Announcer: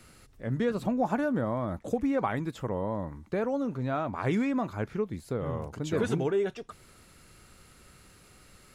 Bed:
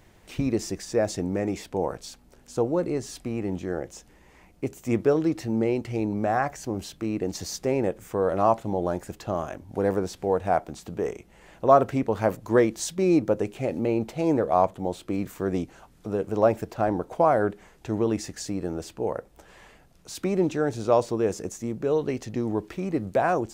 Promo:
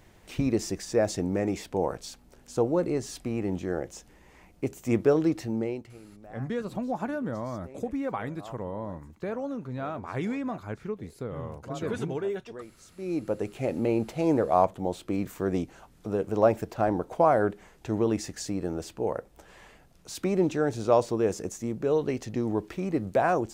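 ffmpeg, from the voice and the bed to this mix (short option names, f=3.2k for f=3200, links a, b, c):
-filter_complex "[0:a]adelay=5900,volume=-3.5dB[a];[1:a]volume=22dB,afade=t=out:st=5.29:d=0.7:silence=0.0707946,afade=t=in:st=12.89:d=0.81:silence=0.0749894[b];[a][b]amix=inputs=2:normalize=0"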